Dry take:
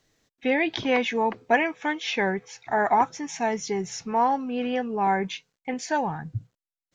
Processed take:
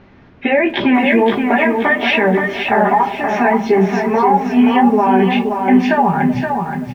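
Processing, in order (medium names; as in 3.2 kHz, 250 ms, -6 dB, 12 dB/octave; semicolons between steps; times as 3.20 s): low-pass that closes with the level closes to 2 kHz, closed at -19 dBFS; treble shelf 4.1 kHz -12 dB; band-stop 490 Hz, Q 12; comb 5 ms, depth 88%; compression 4:1, threshold -25 dBFS, peak gain reduction 10 dB; chorus voices 2, 1.3 Hz, delay 15 ms, depth 3 ms; added noise brown -56 dBFS; distance through air 250 m; repeats whose band climbs or falls 126 ms, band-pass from 210 Hz, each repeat 0.7 oct, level -11 dB; reverberation RT60 0.45 s, pre-delay 3 ms, DRR 12.5 dB; loudness maximiser +21 dB; bit-crushed delay 524 ms, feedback 35%, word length 7-bit, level -5.5 dB; trim -4 dB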